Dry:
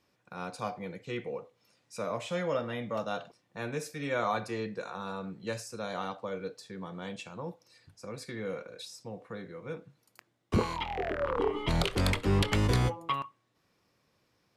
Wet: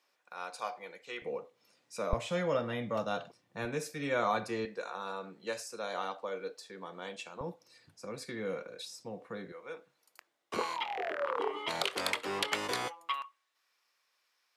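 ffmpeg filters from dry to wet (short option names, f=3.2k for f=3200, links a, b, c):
-af "asetnsamples=n=441:p=0,asendcmd='1.22 highpass f 210;2.13 highpass f 58;3.65 highpass f 140;4.65 highpass f 360;7.41 highpass f 160;9.52 highpass f 550;12.88 highpass f 1200',highpass=640"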